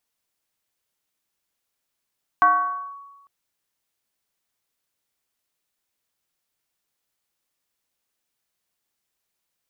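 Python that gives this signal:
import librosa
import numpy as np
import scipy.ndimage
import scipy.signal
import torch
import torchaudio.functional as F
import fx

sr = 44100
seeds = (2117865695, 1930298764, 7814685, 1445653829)

y = fx.fm2(sr, length_s=0.85, level_db=-10.5, carrier_hz=1120.0, ratio=0.36, index=0.72, index_s=0.55, decay_s=1.21, shape='linear')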